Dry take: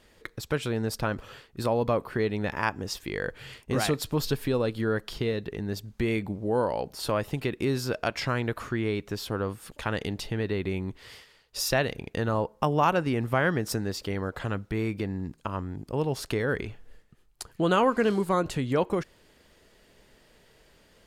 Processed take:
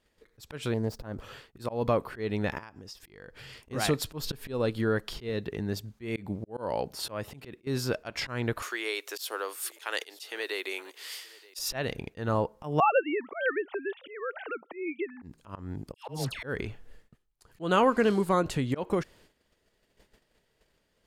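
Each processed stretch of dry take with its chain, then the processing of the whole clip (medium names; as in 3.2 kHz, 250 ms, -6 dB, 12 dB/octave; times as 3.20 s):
0.74–1.20 s: median filter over 5 samples + peaking EQ 2.4 kHz -13 dB 2.1 oct + loudspeaker Doppler distortion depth 0.2 ms
2.58–3.62 s: peaking EQ 5.1 kHz +7 dB 0.26 oct + compression 8:1, threshold -42 dBFS
5.29–7.67 s: high-pass 54 Hz + slow attack 218 ms
8.62–11.59 s: steep high-pass 340 Hz + tilt EQ +4 dB/octave + delay 925 ms -23 dB
12.80–15.22 s: formants replaced by sine waves + high-pass 380 Hz 24 dB/octave
15.94–16.43 s: peaking EQ 390 Hz -9 dB 0.71 oct + phase dispersion lows, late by 146 ms, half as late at 1.2 kHz
whole clip: gate -56 dBFS, range -14 dB; slow attack 165 ms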